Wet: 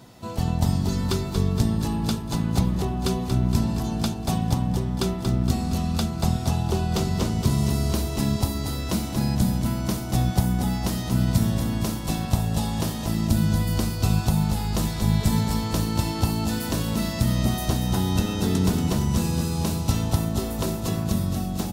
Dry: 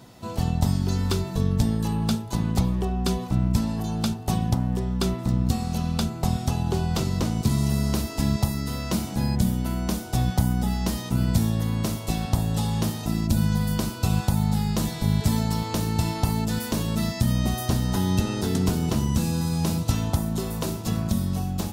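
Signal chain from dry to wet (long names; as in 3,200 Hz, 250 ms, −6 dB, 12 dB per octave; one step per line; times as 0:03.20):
repeating echo 233 ms, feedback 60%, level −7 dB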